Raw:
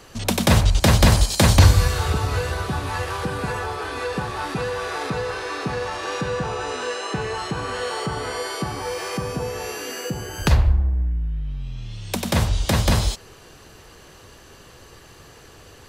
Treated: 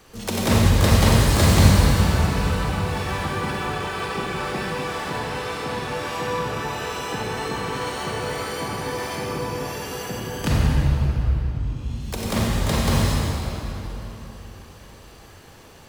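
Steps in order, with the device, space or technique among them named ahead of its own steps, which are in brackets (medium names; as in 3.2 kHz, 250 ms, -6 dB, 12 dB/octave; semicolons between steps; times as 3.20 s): 2.99–4.73 s: comb 5.2 ms, depth 47%; shimmer-style reverb (harmony voices +12 st -5 dB; reverberation RT60 3.6 s, pre-delay 35 ms, DRR -4 dB); trim -7 dB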